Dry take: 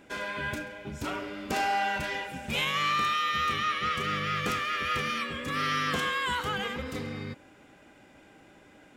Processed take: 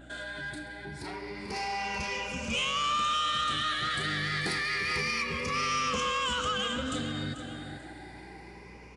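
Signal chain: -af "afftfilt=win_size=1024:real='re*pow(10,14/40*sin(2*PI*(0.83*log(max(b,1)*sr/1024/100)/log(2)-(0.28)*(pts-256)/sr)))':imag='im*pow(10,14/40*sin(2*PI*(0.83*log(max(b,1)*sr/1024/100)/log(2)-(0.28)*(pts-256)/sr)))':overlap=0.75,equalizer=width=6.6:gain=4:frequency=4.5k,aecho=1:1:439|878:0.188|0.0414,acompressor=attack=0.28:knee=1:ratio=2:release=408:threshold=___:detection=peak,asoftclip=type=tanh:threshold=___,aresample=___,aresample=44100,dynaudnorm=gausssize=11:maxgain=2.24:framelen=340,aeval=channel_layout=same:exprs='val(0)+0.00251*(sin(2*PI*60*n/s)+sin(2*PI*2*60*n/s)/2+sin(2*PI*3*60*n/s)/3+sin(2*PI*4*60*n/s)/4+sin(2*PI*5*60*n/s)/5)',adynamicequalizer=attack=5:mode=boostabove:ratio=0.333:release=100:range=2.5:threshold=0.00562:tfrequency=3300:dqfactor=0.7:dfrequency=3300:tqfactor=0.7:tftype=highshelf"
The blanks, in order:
0.0126, 0.0316, 22050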